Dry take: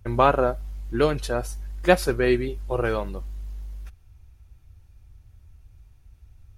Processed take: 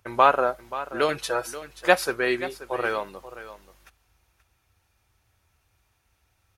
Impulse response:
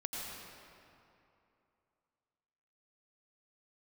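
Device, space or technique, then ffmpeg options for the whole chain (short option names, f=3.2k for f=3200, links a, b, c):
filter by subtraction: -filter_complex "[0:a]asettb=1/sr,asplit=3[a][b][c];[a]atrim=end=1.084[d];[b]atrim=start=1.08:end=1.5,asetpts=PTS-STARTPTS,afade=t=in:d=0.004:c=qsin,afade=t=out:st=0.416:d=0.004:c=qsin,aecho=1:1:6.1:0.74,atrim=end_sample=18522[e];[c]atrim=start=1.496[f];[d][e]acrossfade=d=0.004:c1=hsin:c2=qsin[g];[g][f]acrossfade=d=0.004:c1=qsin:c2=hsin,aecho=1:1:531:0.188,asplit=2[h][i];[i]lowpass=1.1k,volume=-1[j];[h][j]amix=inputs=2:normalize=0,volume=1dB"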